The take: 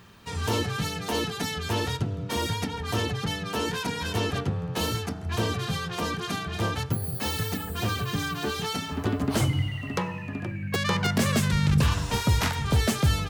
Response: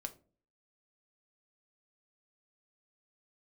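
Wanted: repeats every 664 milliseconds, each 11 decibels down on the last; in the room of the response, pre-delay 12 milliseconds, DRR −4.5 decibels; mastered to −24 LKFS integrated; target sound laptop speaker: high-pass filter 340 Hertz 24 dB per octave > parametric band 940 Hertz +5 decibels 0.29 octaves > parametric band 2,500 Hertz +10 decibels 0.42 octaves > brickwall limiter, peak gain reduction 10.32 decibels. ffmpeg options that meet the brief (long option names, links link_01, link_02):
-filter_complex "[0:a]aecho=1:1:664|1328|1992:0.282|0.0789|0.0221,asplit=2[link_01][link_02];[1:a]atrim=start_sample=2205,adelay=12[link_03];[link_02][link_03]afir=irnorm=-1:irlink=0,volume=7dB[link_04];[link_01][link_04]amix=inputs=2:normalize=0,highpass=frequency=340:width=0.5412,highpass=frequency=340:width=1.3066,equalizer=frequency=940:width_type=o:width=0.29:gain=5,equalizer=frequency=2500:width_type=o:width=0.42:gain=10,volume=2dB,alimiter=limit=-16dB:level=0:latency=1"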